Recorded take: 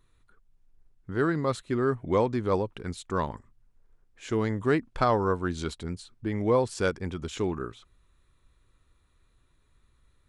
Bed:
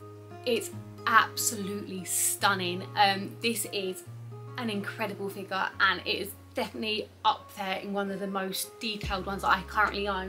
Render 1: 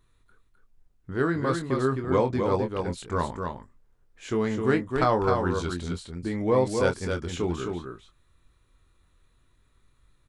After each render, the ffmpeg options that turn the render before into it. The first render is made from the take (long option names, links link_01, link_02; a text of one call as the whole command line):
ffmpeg -i in.wav -filter_complex "[0:a]asplit=2[link_01][link_02];[link_02]adelay=23,volume=-7dB[link_03];[link_01][link_03]amix=inputs=2:normalize=0,asplit=2[link_04][link_05];[link_05]aecho=0:1:259:0.562[link_06];[link_04][link_06]amix=inputs=2:normalize=0" out.wav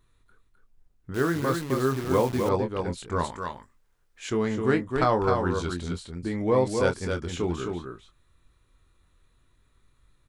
ffmpeg -i in.wav -filter_complex "[0:a]asettb=1/sr,asplit=3[link_01][link_02][link_03];[link_01]atrim=end=1.144[link_04];[link_02]atrim=start=1.14:end=2.49,asetpts=PTS-STARTPTS,afade=type=in:duration=0.004:curve=qsin,afade=type=out:start_time=1.346:duration=0.004:curve=qsin,acrusher=bits=7:dc=4:mix=0:aa=0.000001[link_05];[link_03]atrim=start=2.486[link_06];[link_04][link_05]acrossfade=duration=0.004:curve1=hsin:curve2=qsin[link_07];[link_07][link_06]acrossfade=duration=0.004:curve1=qsin:curve2=hsin,asettb=1/sr,asplit=3[link_08][link_09][link_10];[link_08]atrim=end=3.244[link_11];[link_09]atrim=start=3.24:end=4.3,asetpts=PTS-STARTPTS,afade=type=in:duration=0.004:curve=qsin,afade=type=out:start_time=1.056:duration=0.004:curve=qsin,tiltshelf=frequency=920:gain=-6[link_12];[link_10]atrim=start=4.296[link_13];[link_11][link_12]acrossfade=duration=0.004:curve1=hsin:curve2=qsin[link_14];[link_14][link_13]acrossfade=duration=0.004:curve1=qsin:curve2=hsin" out.wav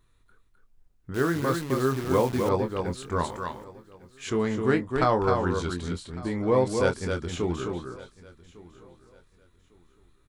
ffmpeg -i in.wav -af "aecho=1:1:1153|2306:0.0891|0.0223" out.wav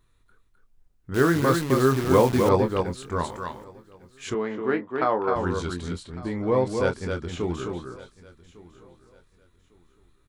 ffmpeg -i in.wav -filter_complex "[0:a]asplit=3[link_01][link_02][link_03];[link_01]afade=type=out:start_time=1.11:duration=0.02[link_04];[link_02]acontrast=30,afade=type=in:start_time=1.11:duration=0.02,afade=type=out:start_time=2.82:duration=0.02[link_05];[link_03]afade=type=in:start_time=2.82:duration=0.02[link_06];[link_04][link_05][link_06]amix=inputs=3:normalize=0,asettb=1/sr,asplit=3[link_07][link_08][link_09];[link_07]atrim=end=4.344[link_10];[link_08]atrim=start=4.34:end=5.36,asetpts=PTS-STARTPTS,afade=type=in:duration=0.004:curve=qsin,afade=type=out:start_time=1.016:duration=0.004:curve=qsin,highpass=270,lowpass=2600[link_11];[link_09]atrim=start=5.356[link_12];[link_10][link_11]acrossfade=duration=0.004:curve1=hsin:curve2=qsin[link_13];[link_13][link_12]acrossfade=duration=0.004:curve1=qsin:curve2=hsin,asettb=1/sr,asplit=3[link_14][link_15][link_16];[link_14]atrim=end=6.034[link_17];[link_15]atrim=start=6.03:end=7.41,asetpts=PTS-STARTPTS,afade=type=in:duration=0.004:curve=qsin,afade=type=out:start_time=1.376:duration=0.004:curve=qsin,highshelf=frequency=6600:gain=-8.5[link_18];[link_16]atrim=start=7.406[link_19];[link_17][link_18]acrossfade=duration=0.004:curve1=hsin:curve2=qsin[link_20];[link_20][link_19]acrossfade=duration=0.004:curve1=qsin:curve2=hsin" out.wav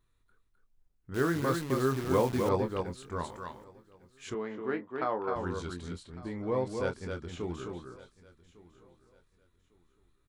ffmpeg -i in.wav -af "volume=-8.5dB" out.wav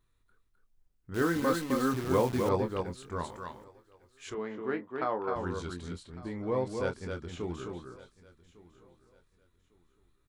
ffmpeg -i in.wav -filter_complex "[0:a]asettb=1/sr,asplit=3[link_01][link_02][link_03];[link_01]atrim=end=1.214[link_04];[link_02]atrim=start=1.21:end=1.94,asetpts=PTS-STARTPTS,afade=type=in:duration=0.004:curve=qsin,afade=type=out:start_time=0.726:duration=0.004:curve=qsin,aecho=1:1:3.9:0.65,atrim=end_sample=32193[link_05];[link_03]atrim=start=1.936[link_06];[link_04][link_05]acrossfade=duration=0.004:curve1=hsin:curve2=qsin[link_07];[link_07][link_06]acrossfade=duration=0.004:curve1=qsin:curve2=hsin,asettb=1/sr,asplit=3[link_08][link_09][link_10];[link_08]atrim=end=3.684[link_11];[link_09]atrim=start=3.68:end=4.38,asetpts=PTS-STARTPTS,afade=type=in:duration=0.004:curve=qsin,afade=type=out:start_time=0.696:duration=0.004:curve=qsin,equalizer=frequency=180:width=1.5:gain=-13.5[link_12];[link_10]atrim=start=4.376[link_13];[link_11][link_12]acrossfade=duration=0.004:curve1=hsin:curve2=qsin[link_14];[link_14][link_13]acrossfade=duration=0.004:curve1=qsin:curve2=hsin" out.wav